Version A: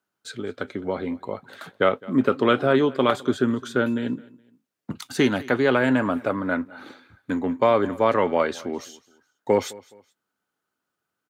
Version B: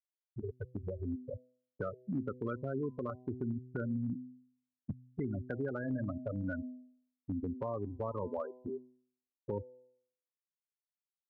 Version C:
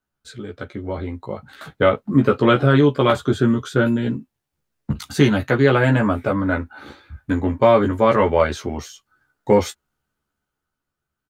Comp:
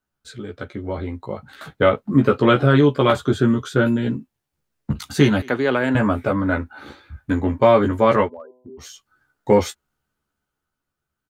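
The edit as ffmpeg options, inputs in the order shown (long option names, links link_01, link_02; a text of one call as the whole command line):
ffmpeg -i take0.wav -i take1.wav -i take2.wav -filter_complex "[2:a]asplit=3[link_01][link_02][link_03];[link_01]atrim=end=5.422[link_04];[0:a]atrim=start=5.418:end=5.952[link_05];[link_02]atrim=start=5.948:end=8.3[link_06];[1:a]atrim=start=8.2:end=8.87[link_07];[link_03]atrim=start=8.77[link_08];[link_04][link_05]acrossfade=duration=0.004:curve1=hsin:curve2=hsin[link_09];[link_09][link_06]acrossfade=duration=0.004:curve1=hsin:curve2=hsin[link_10];[link_10][link_07]acrossfade=duration=0.1:curve1=tri:curve2=tri[link_11];[link_11][link_08]acrossfade=duration=0.1:curve1=tri:curve2=tri" out.wav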